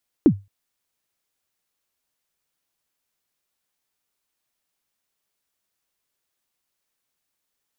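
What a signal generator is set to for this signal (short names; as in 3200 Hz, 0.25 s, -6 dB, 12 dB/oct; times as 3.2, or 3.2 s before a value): kick drum length 0.22 s, from 360 Hz, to 99 Hz, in 75 ms, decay 0.24 s, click off, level -5.5 dB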